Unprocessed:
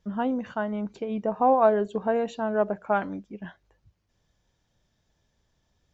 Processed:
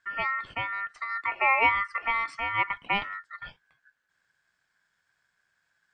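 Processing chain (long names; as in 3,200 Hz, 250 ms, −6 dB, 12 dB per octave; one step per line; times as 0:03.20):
0:00.45–0:00.89: parametric band 3,800 Hz −9.5 dB 0.95 octaves
ring modulation 1,600 Hz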